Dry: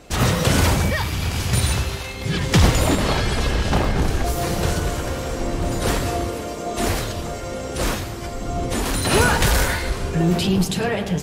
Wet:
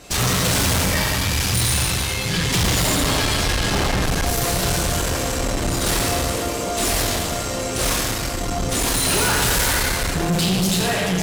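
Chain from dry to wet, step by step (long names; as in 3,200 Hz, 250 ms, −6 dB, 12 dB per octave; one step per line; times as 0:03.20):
high-shelf EQ 2,400 Hz +9 dB
dense smooth reverb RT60 1.7 s, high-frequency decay 0.85×, DRR −2 dB
tube saturation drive 18 dB, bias 0.55
level +1.5 dB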